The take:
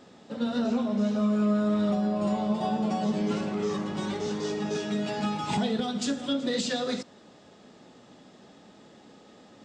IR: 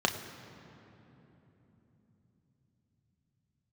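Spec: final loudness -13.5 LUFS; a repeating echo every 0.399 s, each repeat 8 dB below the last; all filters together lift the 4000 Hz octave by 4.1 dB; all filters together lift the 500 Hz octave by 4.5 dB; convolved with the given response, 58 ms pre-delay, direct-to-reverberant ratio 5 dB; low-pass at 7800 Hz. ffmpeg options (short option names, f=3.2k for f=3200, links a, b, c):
-filter_complex "[0:a]lowpass=7.8k,equalizer=f=500:t=o:g=5.5,equalizer=f=4k:t=o:g=5,aecho=1:1:399|798|1197|1596|1995:0.398|0.159|0.0637|0.0255|0.0102,asplit=2[a][b];[1:a]atrim=start_sample=2205,adelay=58[c];[b][c]afir=irnorm=-1:irlink=0,volume=-15.5dB[d];[a][d]amix=inputs=2:normalize=0,volume=10.5dB"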